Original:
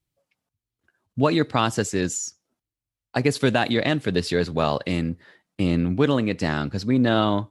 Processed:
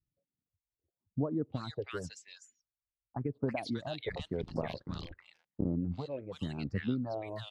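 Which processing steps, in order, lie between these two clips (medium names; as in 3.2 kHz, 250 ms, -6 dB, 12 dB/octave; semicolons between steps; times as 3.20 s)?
4.02–5.67 s: cycle switcher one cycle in 3, muted; level-controlled noise filter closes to 400 Hz, open at -15 dBFS; reverb removal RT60 0.81 s; compression, threshold -23 dBFS, peak gain reduction 9.5 dB; phase shifter stages 4, 0.93 Hz, lowest notch 200–2500 Hz; bands offset in time lows, highs 320 ms, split 1.2 kHz; warped record 78 rpm, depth 100 cents; trim -5.5 dB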